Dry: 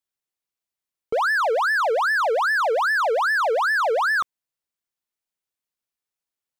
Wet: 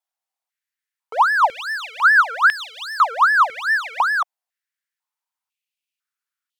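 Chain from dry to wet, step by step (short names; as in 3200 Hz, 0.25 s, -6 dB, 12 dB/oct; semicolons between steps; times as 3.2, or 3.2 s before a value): vibrato 1.4 Hz 28 cents; stepped high-pass 2 Hz 760–3200 Hz; gain -1 dB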